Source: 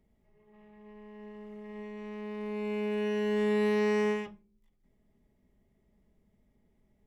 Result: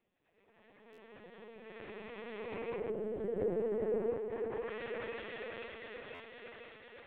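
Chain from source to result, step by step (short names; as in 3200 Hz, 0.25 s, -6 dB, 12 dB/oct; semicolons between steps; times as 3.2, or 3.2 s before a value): noise vocoder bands 16; on a send: thinning echo 0.505 s, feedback 71%, high-pass 180 Hz, level -6 dB; on the sum: treble ducked by the level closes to 560 Hz, closed at -27.5 dBFS; LPC vocoder at 8 kHz pitch kept; tilt +3.5 dB/oct; stuck buffer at 0.92/6.14, samples 512, times 4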